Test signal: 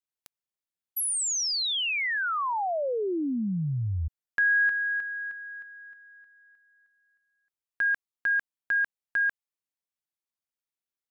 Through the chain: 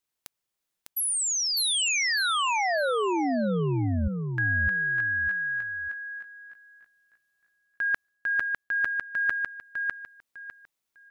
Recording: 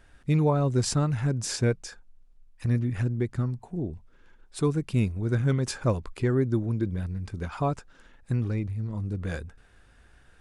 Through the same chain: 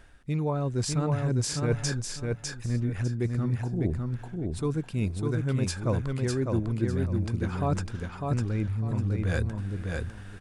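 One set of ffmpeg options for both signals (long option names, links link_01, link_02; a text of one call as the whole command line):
ffmpeg -i in.wav -af "areverse,acompressor=threshold=-35dB:ratio=6:attack=44:release=418:knee=1:detection=rms,areverse,aecho=1:1:602|1204|1806:0.668|0.16|0.0385,volume=8.5dB" out.wav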